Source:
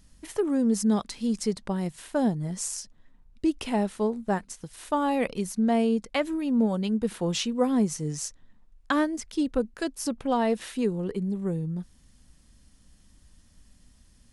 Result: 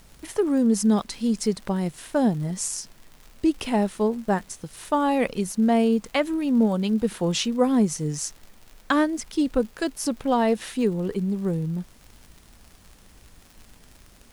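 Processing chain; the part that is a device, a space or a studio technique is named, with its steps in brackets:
vinyl LP (surface crackle 85 per second −40 dBFS; pink noise bed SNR 32 dB)
level +3.5 dB

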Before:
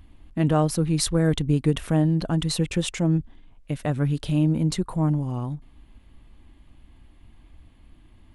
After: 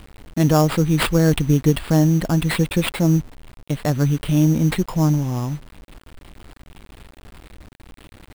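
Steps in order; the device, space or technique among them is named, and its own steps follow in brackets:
early 8-bit sampler (sample-rate reduction 6,100 Hz, jitter 0%; bit reduction 8 bits)
level +5 dB

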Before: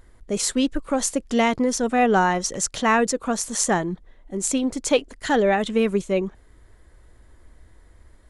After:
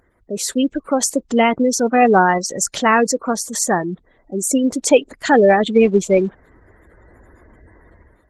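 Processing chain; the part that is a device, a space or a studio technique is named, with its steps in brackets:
noise-suppressed video call (high-pass filter 170 Hz 6 dB per octave; gate on every frequency bin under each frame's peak −20 dB strong; automatic gain control gain up to 13 dB; Opus 16 kbit/s 48,000 Hz)

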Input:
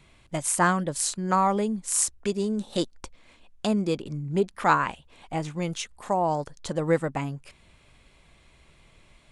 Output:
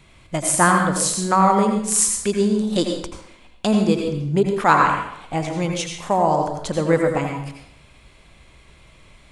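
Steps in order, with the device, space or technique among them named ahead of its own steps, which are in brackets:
bathroom (convolution reverb RT60 0.75 s, pre-delay 77 ms, DRR 2.5 dB)
level +5.5 dB

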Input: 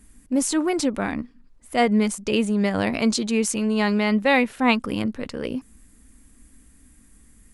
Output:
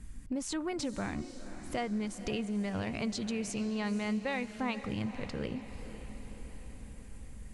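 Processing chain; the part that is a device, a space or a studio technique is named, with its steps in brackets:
jukebox (low-pass filter 7,300 Hz 12 dB per octave; low shelf with overshoot 190 Hz +7 dB, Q 1.5; downward compressor 4 to 1, threshold −35 dBFS, peak gain reduction 17.5 dB)
feedback delay with all-pass diffusion 505 ms, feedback 59%, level −12 dB

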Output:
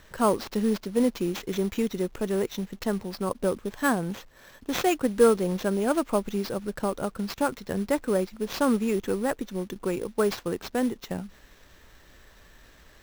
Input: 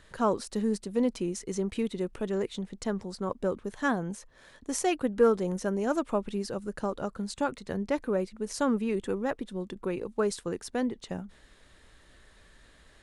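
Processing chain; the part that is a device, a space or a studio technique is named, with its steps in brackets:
early companding sampler (sample-rate reduction 9,600 Hz, jitter 0%; log-companded quantiser 6 bits)
level +3.5 dB

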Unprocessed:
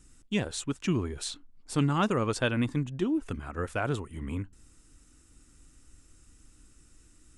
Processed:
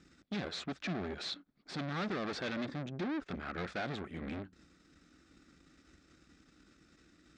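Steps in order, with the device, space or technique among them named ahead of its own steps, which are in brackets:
guitar amplifier (tube saturation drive 41 dB, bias 0.75; bass and treble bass −7 dB, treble +7 dB; loudspeaker in its box 88–3,800 Hz, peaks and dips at 110 Hz −9 dB, 180 Hz +6 dB, 470 Hz −3 dB, 950 Hz −9 dB, 2,900 Hz −9 dB)
level +9 dB

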